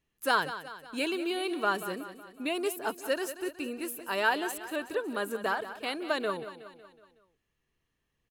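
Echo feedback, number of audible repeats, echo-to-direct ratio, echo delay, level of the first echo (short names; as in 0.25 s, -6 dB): 52%, 4, -11.0 dB, 0.185 s, -12.5 dB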